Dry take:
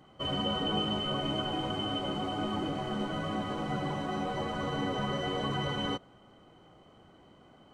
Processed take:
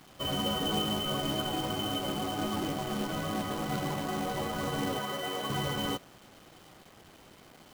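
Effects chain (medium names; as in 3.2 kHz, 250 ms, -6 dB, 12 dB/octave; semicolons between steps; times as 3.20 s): 4.99–5.50 s: high-pass 440 Hz 6 dB/octave; companded quantiser 4-bit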